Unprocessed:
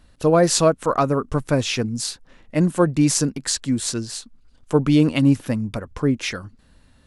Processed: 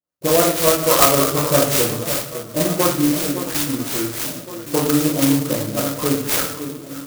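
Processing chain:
noise gate −40 dBFS, range −36 dB
high-shelf EQ 3,800 Hz +10 dB
mains-hum notches 50/100/150/200/250/300 Hz
downward compressor, threshold −19 dBFS, peak gain reduction 10 dB
loudspeaker in its box 200–5,400 Hz, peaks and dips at 230 Hz −8 dB, 610 Hz +4 dB, 1,300 Hz +9 dB
all-pass dispersion highs, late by 81 ms, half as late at 1,600 Hz
on a send: delay that swaps between a low-pass and a high-pass 559 ms, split 1,400 Hz, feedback 68%, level −11 dB
on the sum: rectangular room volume 140 cubic metres, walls mixed, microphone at 0.96 metres
converter with an unsteady clock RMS 0.14 ms
level +3.5 dB

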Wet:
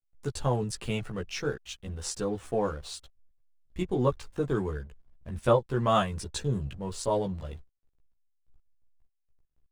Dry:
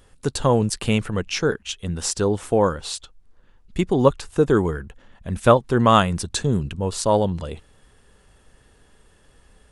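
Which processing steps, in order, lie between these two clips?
slack as between gear wheels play −38 dBFS
multi-voice chorus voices 6, 0.33 Hz, delay 15 ms, depth 1.5 ms
level −7 dB

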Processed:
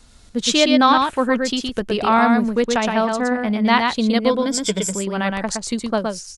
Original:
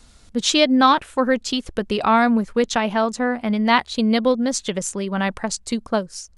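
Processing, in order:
0:04.30–0:04.93: EQ curve with evenly spaced ripples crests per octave 1.7, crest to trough 12 dB
on a send: single-tap delay 117 ms −4 dB

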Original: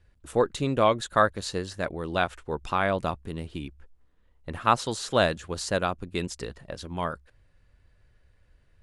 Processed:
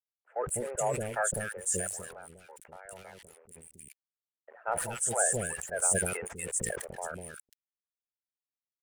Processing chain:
spectral magnitudes quantised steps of 30 dB
high-pass filter 330 Hz 6 dB per octave
noise gate with hold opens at −52 dBFS
high shelf with overshoot 6,400 Hz +12.5 dB, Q 3
leveller curve on the samples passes 1
0:01.75–0:04.64: downward compressor 4 to 1, threshold −36 dBFS, peak gain reduction 15 dB
phaser with its sweep stopped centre 1,100 Hz, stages 6
dead-zone distortion −51.5 dBFS
three-band delay without the direct sound mids, lows, highs 200/240 ms, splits 430/1,900 Hz
level that may fall only so fast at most 43 dB per second
level −5.5 dB

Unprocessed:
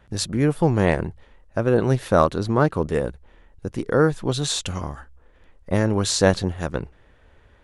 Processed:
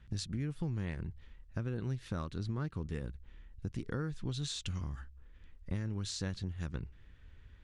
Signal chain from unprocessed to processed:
guitar amp tone stack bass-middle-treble 6-0-2
downward compressor 6 to 1, threshold −46 dBFS, peak gain reduction 14.5 dB
high-frequency loss of the air 70 metres
level +12 dB

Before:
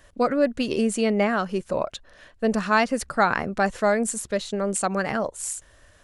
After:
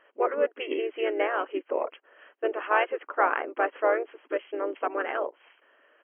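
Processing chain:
linear-phase brick-wall band-pass 310–3,300 Hz
pitch-shifted copies added −5 semitones −9 dB, −3 semitones −8 dB
level −4 dB

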